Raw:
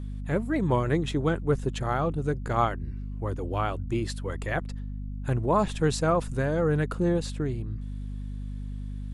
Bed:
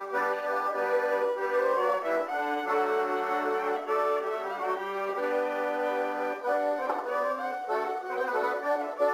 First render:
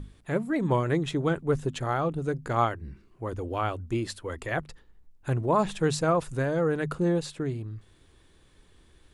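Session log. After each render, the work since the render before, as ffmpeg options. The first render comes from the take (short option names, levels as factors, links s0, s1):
-af "bandreject=f=50:t=h:w=6,bandreject=f=100:t=h:w=6,bandreject=f=150:t=h:w=6,bandreject=f=200:t=h:w=6,bandreject=f=250:t=h:w=6"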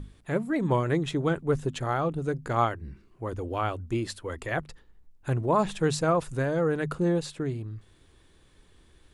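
-af anull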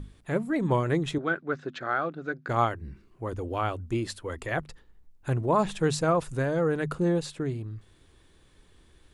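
-filter_complex "[0:a]asettb=1/sr,asplit=3[s0][s1][s2];[s0]atrim=end=1.184[s3];[s1]atrim=start=1.18:end=2.49,asetpts=PTS-STARTPTS,afade=t=in:d=0.004:c=qsin,afade=t=out:st=1.306:d=0.004:c=qsin,highpass=290,equalizer=f=450:t=q:w=4:g=-6,equalizer=f=920:t=q:w=4:g=-8,equalizer=f=1500:t=q:w=4:g=9,equalizer=f=3000:t=q:w=4:g=-6,lowpass=f=4700:w=0.5412,lowpass=f=4700:w=1.3066[s4];[s2]atrim=start=2.486[s5];[s3][s4]acrossfade=d=0.004:c1=hsin:c2=qsin[s6];[s6][s5]acrossfade=d=0.004:c1=qsin:c2=hsin"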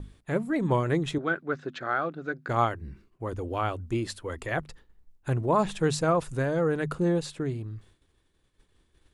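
-af "agate=range=0.0224:threshold=0.00355:ratio=3:detection=peak"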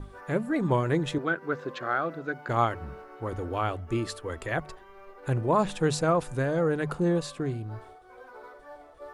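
-filter_complex "[1:a]volume=0.119[s0];[0:a][s0]amix=inputs=2:normalize=0"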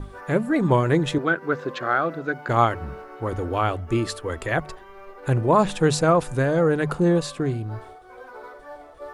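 -af "volume=2"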